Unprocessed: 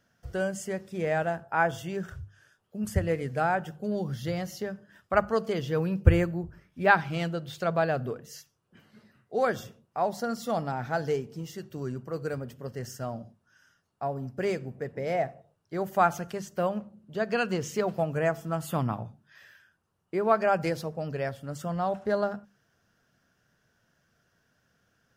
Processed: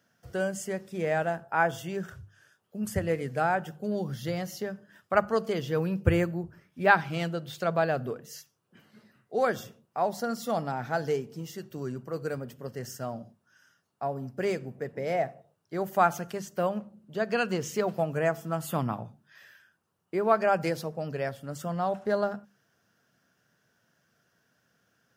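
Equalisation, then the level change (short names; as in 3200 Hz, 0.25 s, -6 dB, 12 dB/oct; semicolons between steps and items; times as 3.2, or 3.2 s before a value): HPF 120 Hz; high shelf 11000 Hz +5 dB; 0.0 dB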